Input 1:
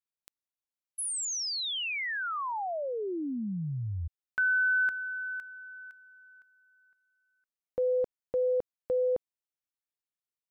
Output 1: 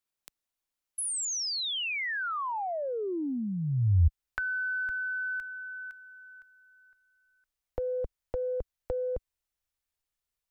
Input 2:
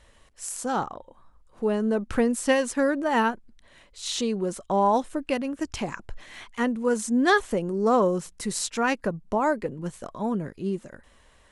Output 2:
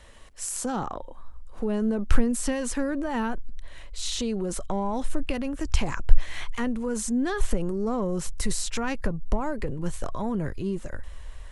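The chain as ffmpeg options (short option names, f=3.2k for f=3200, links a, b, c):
-filter_complex "[0:a]acrossover=split=250[a][b];[b]acompressor=threshold=-38dB:ratio=8:attack=8.5:release=20:knee=2.83:detection=peak[c];[a][c]amix=inputs=2:normalize=0,asubboost=boost=10:cutoff=62,volume=5.5dB"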